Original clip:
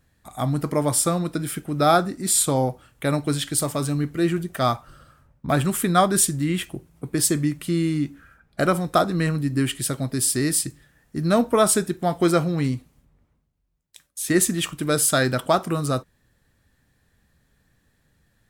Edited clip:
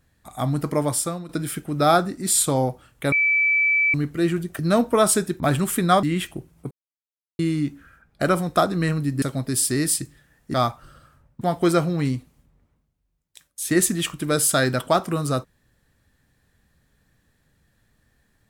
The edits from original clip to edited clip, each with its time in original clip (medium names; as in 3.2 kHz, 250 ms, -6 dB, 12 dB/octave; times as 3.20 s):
0.79–1.29 s: fade out, to -13.5 dB
3.12–3.94 s: bleep 2.31 kHz -16 dBFS
4.59–5.46 s: swap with 11.19–12.00 s
6.09–6.41 s: delete
7.09–7.77 s: mute
9.60–9.87 s: delete